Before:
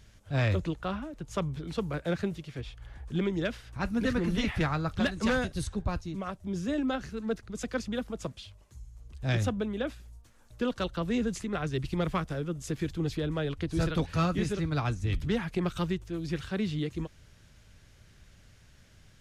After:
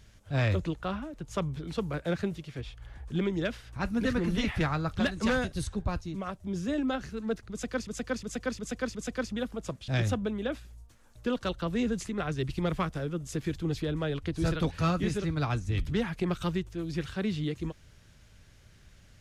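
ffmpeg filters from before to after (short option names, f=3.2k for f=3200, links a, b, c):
-filter_complex "[0:a]asplit=6[a][b][c][d][e][f];[a]atrim=end=7.872[g];[b]atrim=start=7.508:end=7.872[h];[c]atrim=start=7.508:end=7.872[i];[d]atrim=start=7.508:end=7.872[j];[e]atrim=start=7.508:end=8.442[k];[f]atrim=start=9.228[l];[g][h]acrossfade=d=0.004:c1=hsin:c2=hsin[m];[m][i]acrossfade=d=0.004:c1=hsin:c2=hsin[n];[n][j]acrossfade=d=0.004:c1=hsin:c2=hsin[o];[o][k]acrossfade=d=0.004:c1=hsin:c2=hsin[p];[p][l]acrossfade=d=0.004:c1=hsin:c2=hsin"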